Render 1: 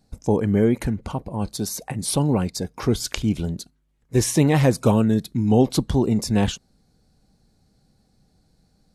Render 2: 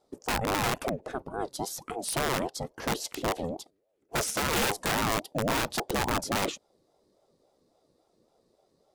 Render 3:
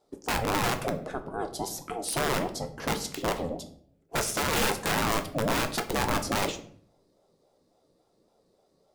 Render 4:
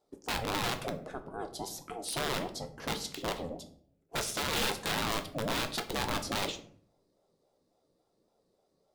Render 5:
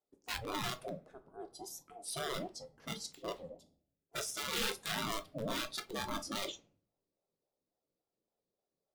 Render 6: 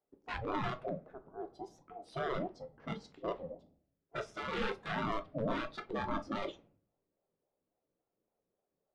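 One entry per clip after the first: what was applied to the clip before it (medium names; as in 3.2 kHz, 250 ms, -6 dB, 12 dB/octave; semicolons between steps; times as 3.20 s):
integer overflow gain 14.5 dB; ring modulator with a swept carrier 470 Hz, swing 30%, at 3.6 Hz; trim -4.5 dB
simulated room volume 80 m³, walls mixed, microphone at 0.34 m
dynamic bell 3.7 kHz, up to +7 dB, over -47 dBFS, Q 1.6; trim -6.5 dB
spectral noise reduction 13 dB; trim -3.5 dB
low-pass 1.7 kHz 12 dB/octave; trim +4 dB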